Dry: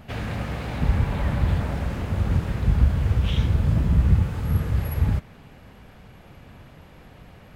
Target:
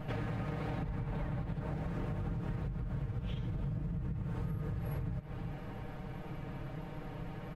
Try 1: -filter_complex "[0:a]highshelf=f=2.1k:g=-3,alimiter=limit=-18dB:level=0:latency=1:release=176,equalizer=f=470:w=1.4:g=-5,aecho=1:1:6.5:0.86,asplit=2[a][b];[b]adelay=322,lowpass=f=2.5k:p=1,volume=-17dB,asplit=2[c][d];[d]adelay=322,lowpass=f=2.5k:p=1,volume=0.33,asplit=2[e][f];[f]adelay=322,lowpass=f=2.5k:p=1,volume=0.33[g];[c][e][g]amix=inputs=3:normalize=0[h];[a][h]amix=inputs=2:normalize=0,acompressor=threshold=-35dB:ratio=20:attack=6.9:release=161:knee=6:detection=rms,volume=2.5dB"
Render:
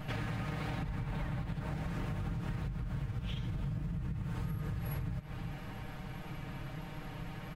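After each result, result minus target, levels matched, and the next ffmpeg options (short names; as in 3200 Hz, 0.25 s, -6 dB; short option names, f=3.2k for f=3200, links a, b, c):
4000 Hz band +6.5 dB; 500 Hz band -3.5 dB
-filter_complex "[0:a]highshelf=f=2.1k:g=-12,alimiter=limit=-18dB:level=0:latency=1:release=176,equalizer=f=470:w=1.4:g=-5,aecho=1:1:6.5:0.86,asplit=2[a][b];[b]adelay=322,lowpass=f=2.5k:p=1,volume=-17dB,asplit=2[c][d];[d]adelay=322,lowpass=f=2.5k:p=1,volume=0.33,asplit=2[e][f];[f]adelay=322,lowpass=f=2.5k:p=1,volume=0.33[g];[c][e][g]amix=inputs=3:normalize=0[h];[a][h]amix=inputs=2:normalize=0,acompressor=threshold=-35dB:ratio=20:attack=6.9:release=161:knee=6:detection=rms,volume=2.5dB"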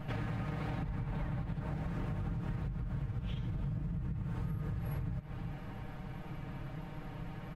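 500 Hz band -3.5 dB
-filter_complex "[0:a]highshelf=f=2.1k:g=-12,alimiter=limit=-18dB:level=0:latency=1:release=176,aecho=1:1:6.5:0.86,asplit=2[a][b];[b]adelay=322,lowpass=f=2.5k:p=1,volume=-17dB,asplit=2[c][d];[d]adelay=322,lowpass=f=2.5k:p=1,volume=0.33,asplit=2[e][f];[f]adelay=322,lowpass=f=2.5k:p=1,volume=0.33[g];[c][e][g]amix=inputs=3:normalize=0[h];[a][h]amix=inputs=2:normalize=0,acompressor=threshold=-35dB:ratio=20:attack=6.9:release=161:knee=6:detection=rms,volume=2.5dB"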